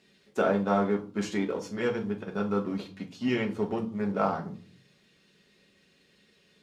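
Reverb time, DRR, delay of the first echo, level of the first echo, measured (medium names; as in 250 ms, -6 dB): 0.40 s, 1.0 dB, no echo, no echo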